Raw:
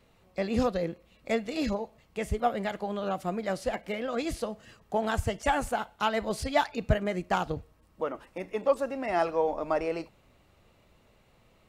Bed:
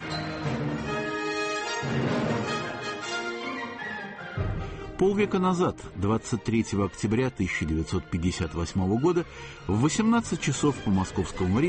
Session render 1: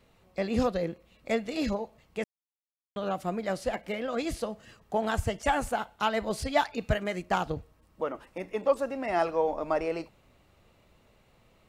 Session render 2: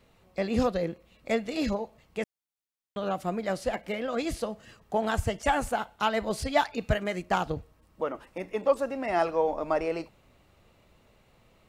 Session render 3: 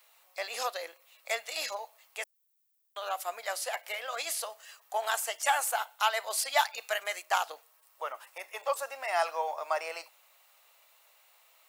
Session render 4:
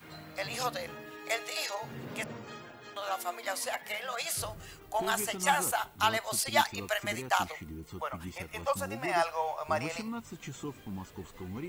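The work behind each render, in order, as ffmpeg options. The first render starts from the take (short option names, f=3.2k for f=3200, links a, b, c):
-filter_complex "[0:a]asettb=1/sr,asplit=3[a][b][c];[a]atrim=end=6.804[d];[b]atrim=start=6.8:end=7.23,asetpts=PTS-STARTPTS,afade=t=in:d=0.004:c=qsin,afade=t=out:st=0.426:d=0.004:c=qsin,tiltshelf=f=970:g=-3.5[e];[c]atrim=start=7.226[f];[d][e]acrossfade=d=0.004:c1=hsin:c2=qsin[g];[g][f]acrossfade=d=0.004:c1=qsin:c2=hsin,asplit=3[h][i][j];[h]atrim=end=2.24,asetpts=PTS-STARTPTS,afade=t=out:st=2.236:d=0.004:c=hsin[k];[i]atrim=start=2.24:end=2.96,asetpts=PTS-STARTPTS,volume=0[l];[j]atrim=start=2.96,asetpts=PTS-STARTPTS,afade=t=in:d=0.004:c=hsin[m];[k][l][m]concat=n=3:v=0:a=1"
-af "volume=1dB"
-af "highpass=f=680:w=0.5412,highpass=f=680:w=1.3066,aemphasis=mode=production:type=bsi"
-filter_complex "[1:a]volume=-16dB[a];[0:a][a]amix=inputs=2:normalize=0"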